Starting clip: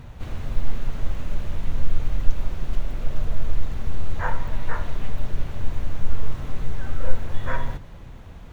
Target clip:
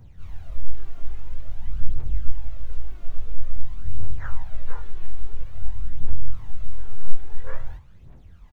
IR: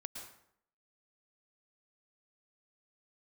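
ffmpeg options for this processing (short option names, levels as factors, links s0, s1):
-filter_complex "[0:a]afftfilt=real='re':imag='-im':win_size=2048:overlap=0.75,aphaser=in_gain=1:out_gain=1:delay=2.9:decay=0.67:speed=0.49:type=triangular,asplit=3[s0][s1][s2];[s1]asetrate=37084,aresample=44100,atempo=1.18921,volume=0.631[s3];[s2]asetrate=52444,aresample=44100,atempo=0.840896,volume=0.158[s4];[s0][s3][s4]amix=inputs=3:normalize=0,volume=0.282"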